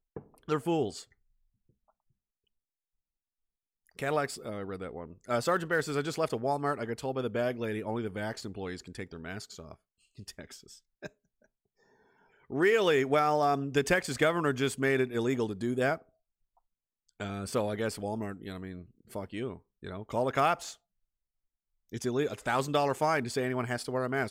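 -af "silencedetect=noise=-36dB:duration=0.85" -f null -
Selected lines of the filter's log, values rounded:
silence_start: 1.01
silence_end: 3.99 | silence_duration: 2.98
silence_start: 11.07
silence_end: 12.52 | silence_duration: 1.45
silence_start: 15.96
silence_end: 17.20 | silence_duration: 1.24
silence_start: 20.71
silence_end: 21.93 | silence_duration: 1.22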